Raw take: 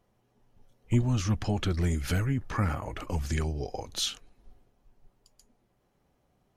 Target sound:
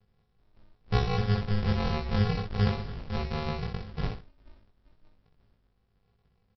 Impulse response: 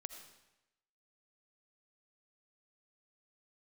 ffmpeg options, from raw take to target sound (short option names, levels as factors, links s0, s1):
-filter_complex "[0:a]equalizer=f=210:t=o:w=0.52:g=-13.5,aresample=11025,acrusher=samples=36:mix=1:aa=0.000001,aresample=44100,asplit=2[s0][s1];[s1]adelay=19,volume=0.75[s2];[s0][s2]amix=inputs=2:normalize=0,aecho=1:1:29|62:0.316|0.501"